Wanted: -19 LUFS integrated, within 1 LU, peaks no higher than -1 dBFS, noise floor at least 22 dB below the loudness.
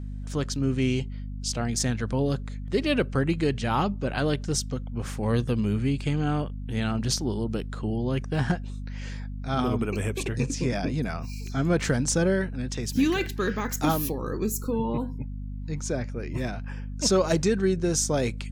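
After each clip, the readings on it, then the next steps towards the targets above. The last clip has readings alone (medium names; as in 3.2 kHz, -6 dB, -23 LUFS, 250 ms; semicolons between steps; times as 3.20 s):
hum 50 Hz; highest harmonic 250 Hz; hum level -32 dBFS; loudness -27.5 LUFS; peak level -10.0 dBFS; loudness target -19.0 LUFS
-> de-hum 50 Hz, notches 5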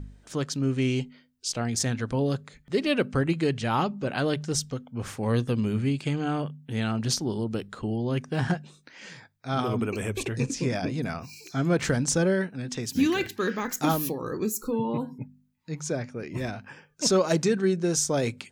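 hum not found; loudness -28.0 LUFS; peak level -10.5 dBFS; loudness target -19.0 LUFS
-> trim +9 dB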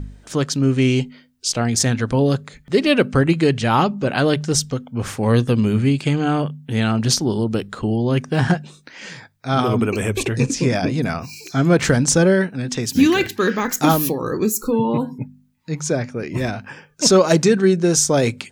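loudness -19.0 LUFS; peak level -1.5 dBFS; noise floor -52 dBFS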